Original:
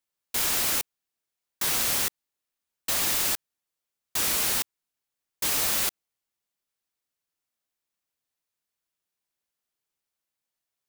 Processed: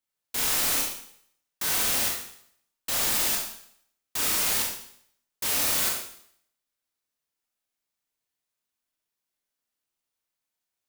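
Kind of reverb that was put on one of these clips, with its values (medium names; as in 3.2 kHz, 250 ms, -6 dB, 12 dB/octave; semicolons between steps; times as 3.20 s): Schroeder reverb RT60 0.64 s, combs from 25 ms, DRR -1 dB; trim -3 dB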